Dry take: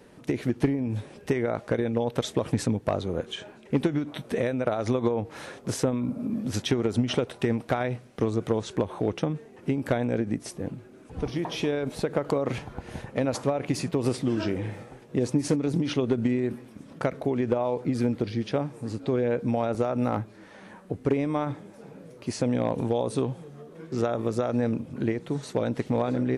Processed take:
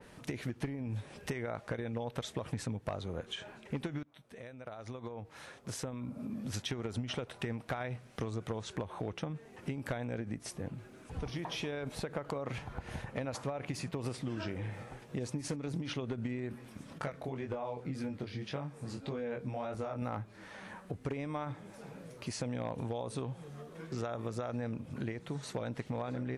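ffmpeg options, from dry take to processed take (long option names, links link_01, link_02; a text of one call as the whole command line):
ffmpeg -i in.wav -filter_complex "[0:a]asettb=1/sr,asplit=3[link_01][link_02][link_03];[link_01]atrim=end=16.984[link_04];[link_02]atrim=start=16.98:end=20.02,asetpts=PTS-STARTPTS,afade=type=in:duration=0.004:curve=qsin,afade=type=out:start_time=3.036:duration=0.004:curve=qsin,flanger=delay=20:depth=3.7:speed=1.8[link_05];[link_03]atrim=start=20.016[link_06];[link_04][link_05]acrossfade=duration=0.004:curve1=hsin:curve2=qsin[link_07];[link_07][link_06]acrossfade=duration=0.004:curve1=qsin:curve2=hsin,asplit=2[link_08][link_09];[link_08]atrim=end=4.03,asetpts=PTS-STARTPTS,afade=type=out:start_time=4.026:duration=0.004:curve=hsin:silence=0.0944061[link_10];[link_09]atrim=start=4.03,asetpts=PTS-STARTPTS,afade=type=in:duration=2.84:curve=qua:silence=0.0944061[link_11];[link_10][link_11]concat=n=2:v=0:a=1,equalizer=frequency=330:width=0.67:gain=-8,acompressor=threshold=-40dB:ratio=2.5,adynamicequalizer=threshold=0.00126:dfrequency=3000:dqfactor=0.7:tfrequency=3000:tqfactor=0.7:attack=5:release=100:ratio=0.375:range=2:mode=cutabove:tftype=highshelf,volume=2dB" out.wav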